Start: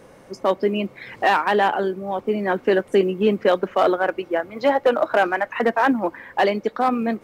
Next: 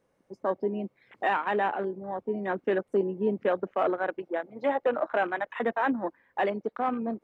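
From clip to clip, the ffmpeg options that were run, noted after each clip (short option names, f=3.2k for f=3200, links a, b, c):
-af "afwtdn=0.0316,volume=-8.5dB"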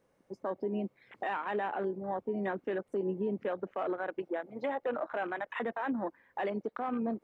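-af "alimiter=level_in=1.5dB:limit=-24dB:level=0:latency=1:release=92,volume=-1.5dB"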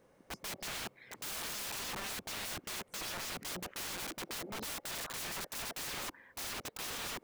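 -af "aeval=exprs='(mod(126*val(0)+1,2)-1)/126':c=same,volume=6dB"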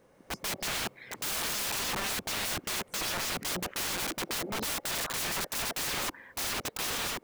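-af "dynaudnorm=f=100:g=5:m=4.5dB,volume=3.5dB"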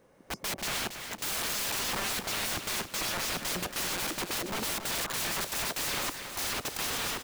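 -af "aecho=1:1:278|556|834|1112|1390:0.355|0.153|0.0656|0.0282|0.0121"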